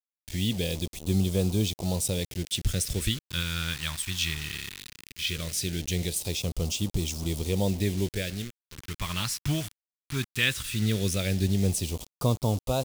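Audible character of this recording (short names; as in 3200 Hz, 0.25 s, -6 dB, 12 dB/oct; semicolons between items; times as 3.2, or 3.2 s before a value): a quantiser's noise floor 6-bit, dither none; phasing stages 2, 0.18 Hz, lowest notch 500–1700 Hz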